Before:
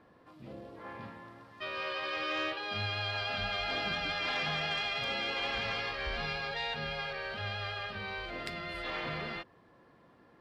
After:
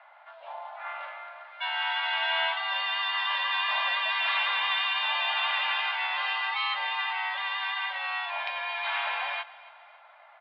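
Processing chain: in parallel at -4 dB: saturation -34 dBFS, distortion -12 dB; on the sum: feedback delay 275 ms, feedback 47%, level -19.5 dB; mistuned SSB +350 Hz 300–3300 Hz; trim +4.5 dB

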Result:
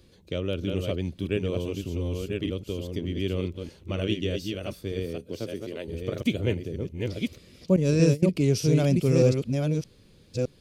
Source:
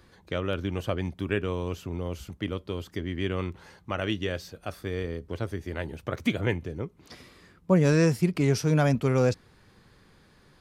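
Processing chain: chunks repeated in reverse 615 ms, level -4 dB; 5.04–5.87 s: high-pass 110 Hz -> 270 Hz 12 dB/octave; 7.76–8.23 s: gate -20 dBFS, range -18 dB; high-order bell 1.2 kHz -12 dB; trim +1 dB

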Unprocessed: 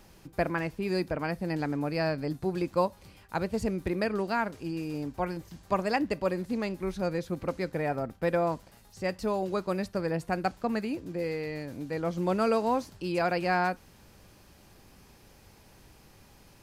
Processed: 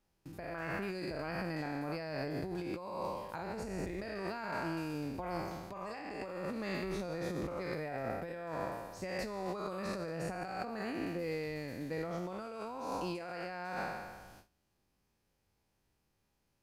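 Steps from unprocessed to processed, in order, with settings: spectral sustain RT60 1.42 s; gate with hold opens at -39 dBFS; compressor with a negative ratio -31 dBFS, ratio -1; trim -8.5 dB

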